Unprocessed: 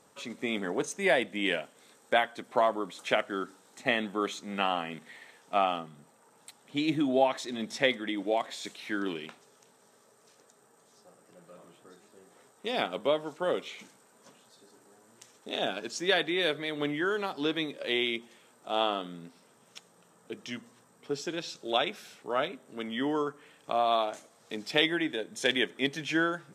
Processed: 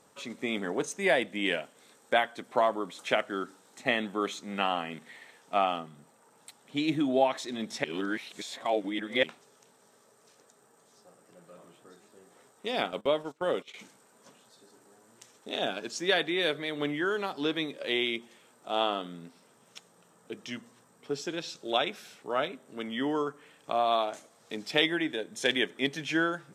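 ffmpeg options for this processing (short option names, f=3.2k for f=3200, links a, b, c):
-filter_complex "[0:a]asettb=1/sr,asplit=3[a][b][c];[a]atrim=end=12.834[d];[b]atrim=start=12.83:end=13.74,asetpts=PTS-STARTPTS,afade=t=in:d=0.004:c=qsin,afade=t=out:st=0.906:d=0.004:c=qsin,agate=range=-17dB:threshold=-42dB:ratio=16:release=100:detection=peak[e];[c]atrim=start=13.736[f];[d][e]acrossfade=d=0.004:c1=hsin:c2=qsin[g];[g][f]acrossfade=d=0.004:c1=qsin:c2=hsin,asplit=3[h][i][j];[h]atrim=end=7.842[k];[i]atrim=start=7.838:end=9.232,asetpts=PTS-STARTPTS,areverse[l];[j]atrim=start=9.228[m];[k][l]acrossfade=d=0.004:c1=hsin:c2=hsin[n];[n][m]acrossfade=d=0.004:c1=hsin:c2=hsin"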